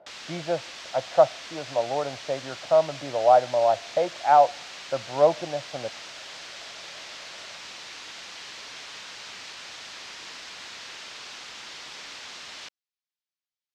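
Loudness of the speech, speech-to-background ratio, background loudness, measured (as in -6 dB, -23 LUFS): -24.0 LUFS, 15.0 dB, -39.0 LUFS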